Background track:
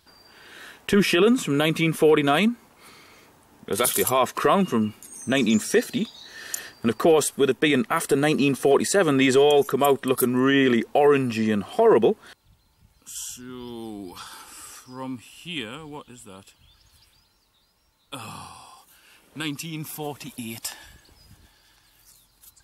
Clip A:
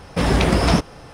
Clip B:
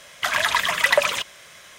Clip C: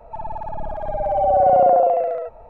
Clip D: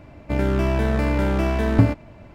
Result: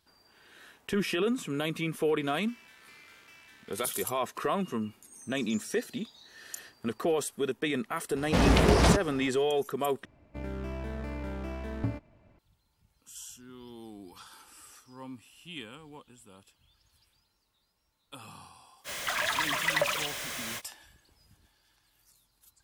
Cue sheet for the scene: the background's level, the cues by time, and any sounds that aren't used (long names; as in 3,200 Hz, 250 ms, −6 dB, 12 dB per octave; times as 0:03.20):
background track −10.5 dB
0:01.89: mix in D −16 dB + Bessel high-pass filter 2,500 Hz, order 4
0:08.16: mix in A −5 dB + highs frequency-modulated by the lows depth 0.68 ms
0:10.05: overwrite with D −16.5 dB
0:18.84: mix in B −11.5 dB, fades 0.05 s + converter with a step at zero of −21 dBFS
not used: C